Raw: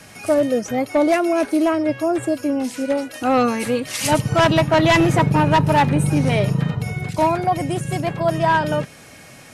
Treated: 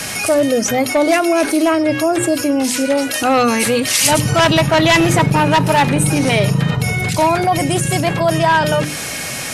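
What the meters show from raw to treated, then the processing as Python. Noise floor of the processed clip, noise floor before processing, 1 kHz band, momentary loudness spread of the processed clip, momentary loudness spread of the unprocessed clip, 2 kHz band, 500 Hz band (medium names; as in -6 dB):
-24 dBFS, -43 dBFS, +3.5 dB, 5 LU, 8 LU, +6.5 dB, +3.5 dB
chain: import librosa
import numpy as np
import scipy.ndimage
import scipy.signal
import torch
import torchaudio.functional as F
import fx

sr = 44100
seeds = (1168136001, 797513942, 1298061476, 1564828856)

y = fx.high_shelf(x, sr, hz=2100.0, db=8.0)
y = fx.hum_notches(y, sr, base_hz=50, count=7)
y = fx.env_flatten(y, sr, amount_pct=50)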